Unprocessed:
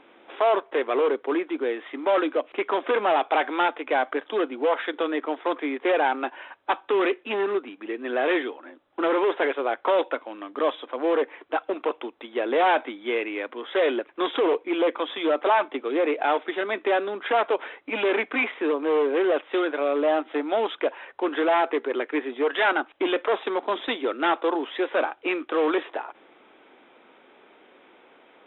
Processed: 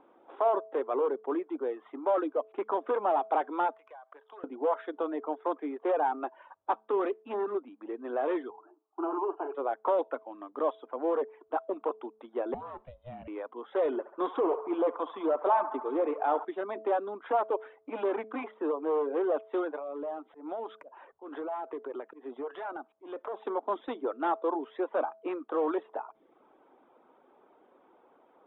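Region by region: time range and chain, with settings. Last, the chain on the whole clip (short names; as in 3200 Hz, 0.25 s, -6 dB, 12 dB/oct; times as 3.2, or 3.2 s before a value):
3.74–4.44 HPF 840 Hz + compressor 16:1, threshold -37 dBFS
8.5–9.55 brick-wall FIR band-pass 290–3100 Hz + fixed phaser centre 530 Hz, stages 6 + doubler 42 ms -10 dB
12.54–13.28 compressor 10:1, threshold -25 dBFS + ring modulator 250 Hz + resonator 74 Hz, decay 0.66 s, mix 40%
13.85–16.45 low shelf 94 Hz +10.5 dB + narrowing echo 69 ms, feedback 76%, band-pass 1100 Hz, level -6 dB
19.77–23.45 compressor 4:1, threshold -28 dBFS + auto swell 0.151 s + hard clip -19.5 dBFS
whole clip: reverb removal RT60 0.53 s; resonant high shelf 1500 Hz -12 dB, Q 1.5; de-hum 217.9 Hz, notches 3; gain -6.5 dB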